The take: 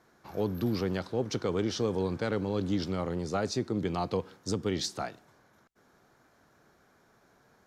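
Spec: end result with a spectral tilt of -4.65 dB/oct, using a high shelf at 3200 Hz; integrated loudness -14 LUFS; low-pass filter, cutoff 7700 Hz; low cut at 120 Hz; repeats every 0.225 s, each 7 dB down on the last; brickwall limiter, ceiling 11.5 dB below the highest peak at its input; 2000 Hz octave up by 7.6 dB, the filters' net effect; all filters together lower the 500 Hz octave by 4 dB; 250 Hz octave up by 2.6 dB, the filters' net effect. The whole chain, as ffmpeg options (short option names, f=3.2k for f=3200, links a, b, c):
-af "highpass=120,lowpass=7.7k,equalizer=f=250:t=o:g=6,equalizer=f=500:t=o:g=-8,equalizer=f=2k:t=o:g=8,highshelf=f=3.2k:g=8,alimiter=level_in=1.5dB:limit=-24dB:level=0:latency=1,volume=-1.5dB,aecho=1:1:225|450|675|900|1125:0.447|0.201|0.0905|0.0407|0.0183,volume=20.5dB"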